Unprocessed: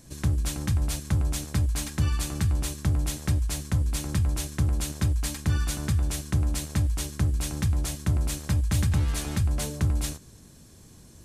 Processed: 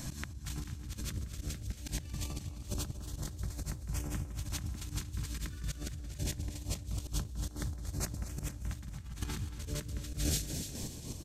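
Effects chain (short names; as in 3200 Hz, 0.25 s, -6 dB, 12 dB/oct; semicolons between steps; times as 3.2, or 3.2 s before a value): bell 10000 Hz -8 dB 0.34 oct; feedback echo 0.159 s, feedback 17%, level -5 dB; chopper 4 Hz, depth 65%, duty 50%; de-hum 49.7 Hz, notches 4; LFO notch saw up 0.23 Hz 410–4800 Hz; thin delay 0.294 s, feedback 33%, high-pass 3300 Hz, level -10.5 dB; negative-ratio compressor -40 dBFS, ratio -1; auto swell 0.124 s; warbling echo 0.231 s, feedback 69%, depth 73 cents, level -14 dB; gain +1.5 dB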